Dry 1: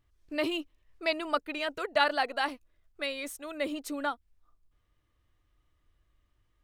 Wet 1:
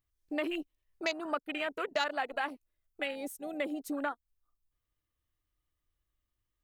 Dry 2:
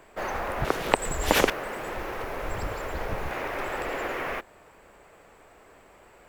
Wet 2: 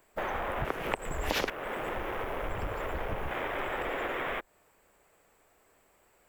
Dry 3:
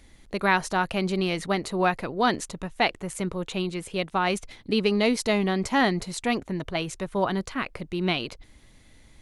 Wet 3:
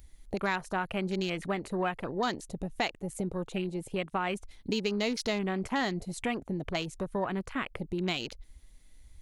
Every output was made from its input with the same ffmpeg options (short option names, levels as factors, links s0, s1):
-af "acontrast=27,afwtdn=0.0282,aemphasis=mode=production:type=50kf,acompressor=threshold=0.0282:ratio=2.5,volume=0.794"